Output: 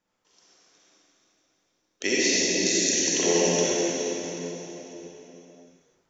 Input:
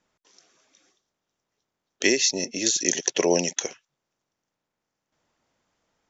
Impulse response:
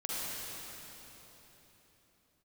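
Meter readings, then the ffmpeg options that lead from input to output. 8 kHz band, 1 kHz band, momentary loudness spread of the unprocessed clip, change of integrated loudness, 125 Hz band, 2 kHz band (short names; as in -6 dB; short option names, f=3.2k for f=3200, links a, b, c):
n/a, +1.0 dB, 8 LU, -0.5 dB, +3.5 dB, +1.0 dB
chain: -filter_complex "[1:a]atrim=start_sample=2205[a];[0:a][a]afir=irnorm=-1:irlink=0,volume=-3.5dB"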